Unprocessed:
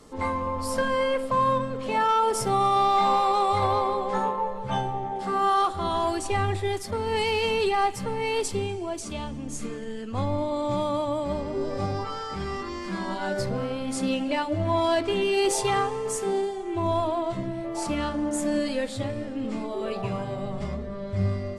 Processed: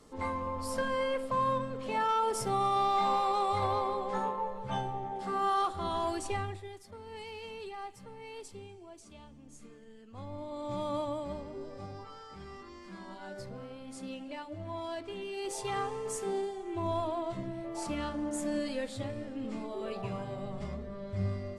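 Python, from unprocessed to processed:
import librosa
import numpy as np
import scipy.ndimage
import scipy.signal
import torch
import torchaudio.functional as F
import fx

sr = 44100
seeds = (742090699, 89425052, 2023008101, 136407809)

y = fx.gain(x, sr, db=fx.line((6.3, -7.0), (6.71, -19.0), (10.07, -19.0), (10.98, -6.5), (11.76, -15.5), (15.38, -15.5), (15.91, -7.5)))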